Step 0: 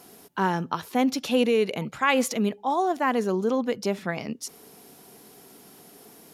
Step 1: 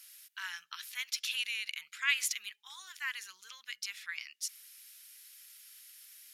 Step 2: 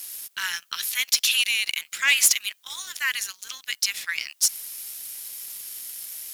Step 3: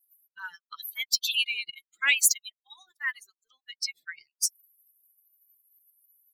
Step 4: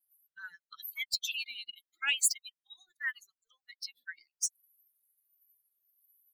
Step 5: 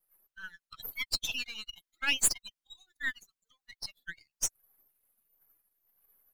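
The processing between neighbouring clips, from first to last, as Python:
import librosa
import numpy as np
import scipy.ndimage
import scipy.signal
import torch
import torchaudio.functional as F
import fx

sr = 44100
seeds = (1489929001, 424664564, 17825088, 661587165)

y1 = scipy.signal.sosfilt(scipy.signal.cheby2(4, 50, 710.0, 'highpass', fs=sr, output='sos'), x)
y1 = F.gain(torch.from_numpy(y1), -1.5).numpy()
y2 = fx.high_shelf(y1, sr, hz=4300.0, db=11.5)
y2 = fx.leveller(y2, sr, passes=2)
y2 = fx.dmg_noise_colour(y2, sr, seeds[0], colour='blue', level_db=-67.0)
y2 = F.gain(torch.from_numpy(y2), 2.5).numpy()
y3 = fx.bin_expand(y2, sr, power=3.0)
y4 = fx.phaser_stages(y3, sr, stages=12, low_hz=120.0, high_hz=1000.0, hz=0.44, feedback_pct=30)
y4 = F.gain(torch.from_numpy(y4), -3.5).numpy()
y5 = np.where(y4 < 0.0, 10.0 ** (-7.0 / 20.0) * y4, y4)
y5 = F.gain(torch.from_numpy(y5), 3.5).numpy()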